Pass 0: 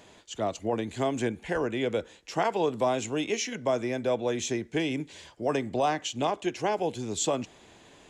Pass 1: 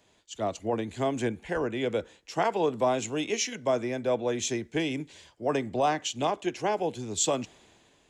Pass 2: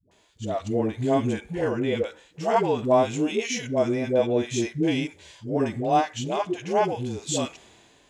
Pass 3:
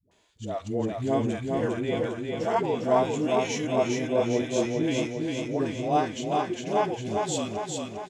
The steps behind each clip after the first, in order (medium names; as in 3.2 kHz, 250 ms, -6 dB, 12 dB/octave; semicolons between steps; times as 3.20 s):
three bands expanded up and down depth 40%
harmonic-percussive split percussive -12 dB; phase dispersion highs, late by 114 ms, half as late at 430 Hz; trim +8 dB
feedback delay 403 ms, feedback 57%, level -3.5 dB; trim -4 dB